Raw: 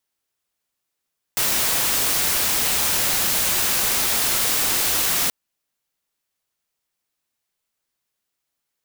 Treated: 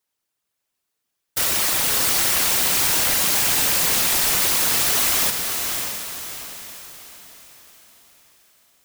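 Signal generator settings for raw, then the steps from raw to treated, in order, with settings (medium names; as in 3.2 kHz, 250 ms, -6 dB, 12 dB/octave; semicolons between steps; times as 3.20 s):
noise white, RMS -20.5 dBFS 3.93 s
whisper effect; on a send: echo that smears into a reverb 592 ms, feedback 43%, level -5 dB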